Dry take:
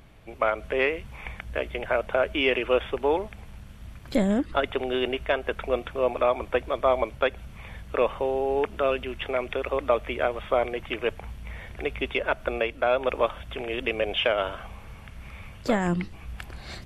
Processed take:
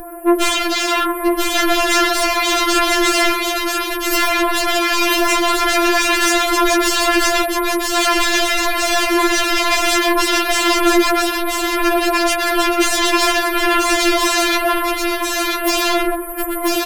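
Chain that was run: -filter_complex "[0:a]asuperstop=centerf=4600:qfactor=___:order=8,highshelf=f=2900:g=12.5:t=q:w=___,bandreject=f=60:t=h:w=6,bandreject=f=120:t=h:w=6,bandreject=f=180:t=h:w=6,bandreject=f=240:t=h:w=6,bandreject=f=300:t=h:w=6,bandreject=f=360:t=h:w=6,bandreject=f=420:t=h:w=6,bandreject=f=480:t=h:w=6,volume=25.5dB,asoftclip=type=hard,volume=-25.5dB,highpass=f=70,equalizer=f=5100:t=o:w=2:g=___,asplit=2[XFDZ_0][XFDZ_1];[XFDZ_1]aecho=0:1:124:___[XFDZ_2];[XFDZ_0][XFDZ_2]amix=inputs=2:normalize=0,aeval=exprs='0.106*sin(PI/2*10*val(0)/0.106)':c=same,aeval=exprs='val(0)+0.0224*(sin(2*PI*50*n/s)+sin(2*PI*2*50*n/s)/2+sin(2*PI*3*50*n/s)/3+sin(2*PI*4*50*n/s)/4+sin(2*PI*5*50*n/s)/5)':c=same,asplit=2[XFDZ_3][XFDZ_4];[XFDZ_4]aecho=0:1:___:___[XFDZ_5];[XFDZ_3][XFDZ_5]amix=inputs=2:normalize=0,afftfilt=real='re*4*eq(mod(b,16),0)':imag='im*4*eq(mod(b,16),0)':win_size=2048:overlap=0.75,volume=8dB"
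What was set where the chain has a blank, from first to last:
0.54, 3, -14, 0.531, 988, 0.668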